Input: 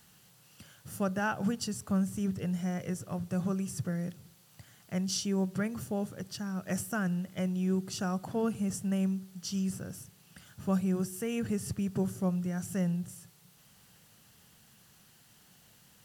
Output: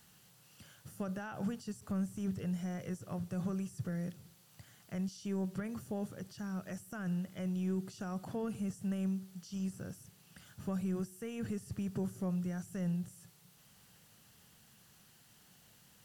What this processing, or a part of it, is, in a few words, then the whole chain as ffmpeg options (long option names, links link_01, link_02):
de-esser from a sidechain: -filter_complex "[0:a]asplit=2[link_01][link_02];[link_02]highpass=frequency=6200:poles=1,apad=whole_len=707498[link_03];[link_01][link_03]sidechaincompress=threshold=-54dB:ratio=4:attack=2:release=24,volume=-2.5dB"